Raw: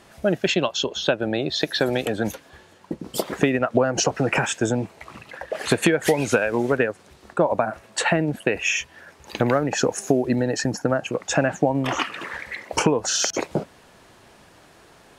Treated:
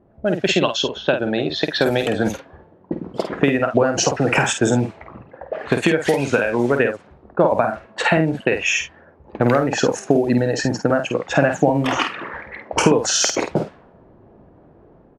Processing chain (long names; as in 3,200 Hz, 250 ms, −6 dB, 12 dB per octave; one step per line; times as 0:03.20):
automatic gain control gain up to 6 dB
low-pass that shuts in the quiet parts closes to 460 Hz, open at −14.5 dBFS
double-tracking delay 50 ms −7 dB